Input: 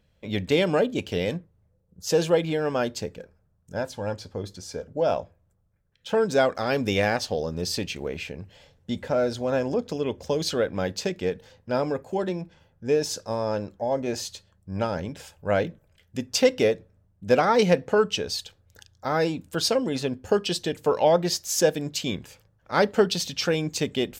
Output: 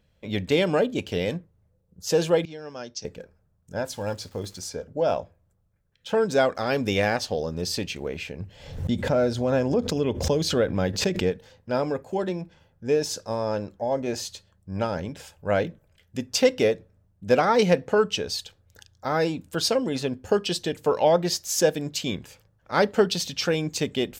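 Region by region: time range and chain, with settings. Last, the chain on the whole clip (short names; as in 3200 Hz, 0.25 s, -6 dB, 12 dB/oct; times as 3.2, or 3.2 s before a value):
2.45–3.05 ladder low-pass 6000 Hz, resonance 80% + three-band expander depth 40%
3.85–4.68 high shelf 4600 Hz +9.5 dB + crackle 510/s -43 dBFS
8.4–11.32 low shelf 240 Hz +7 dB + backwards sustainer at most 82 dB/s
whole clip: dry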